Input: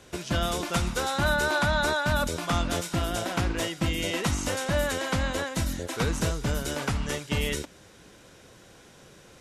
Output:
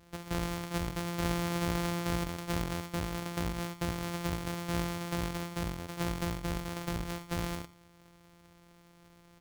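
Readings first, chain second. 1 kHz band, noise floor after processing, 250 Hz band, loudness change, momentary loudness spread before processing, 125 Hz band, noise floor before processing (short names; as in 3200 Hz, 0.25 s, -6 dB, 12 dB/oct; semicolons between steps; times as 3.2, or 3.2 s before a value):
-8.0 dB, -60 dBFS, -4.0 dB, -7.5 dB, 6 LU, -5.5 dB, -53 dBFS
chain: sample sorter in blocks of 256 samples; echo 88 ms -18 dB; gain -7.5 dB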